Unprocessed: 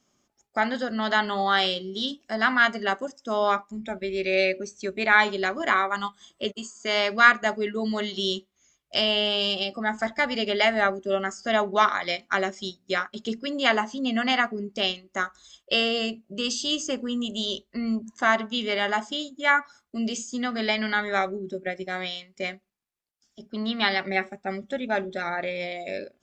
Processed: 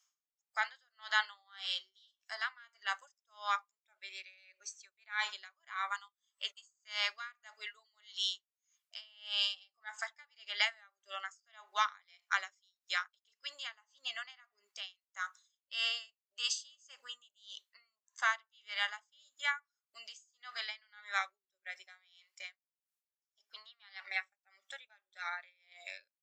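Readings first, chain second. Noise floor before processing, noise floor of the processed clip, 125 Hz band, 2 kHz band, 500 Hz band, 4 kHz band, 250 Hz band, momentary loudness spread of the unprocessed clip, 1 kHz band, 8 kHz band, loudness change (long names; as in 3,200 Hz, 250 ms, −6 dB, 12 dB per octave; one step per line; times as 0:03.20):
−74 dBFS, below −85 dBFS, below −40 dB, −13.5 dB, −30.5 dB, −11.0 dB, below −40 dB, 11 LU, −15.5 dB, −9.0 dB, −13.0 dB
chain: high-pass filter 1,000 Hz 24 dB per octave
high-shelf EQ 4,800 Hz +8 dB
tremolo with a sine in dB 1.7 Hz, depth 33 dB
level −6.5 dB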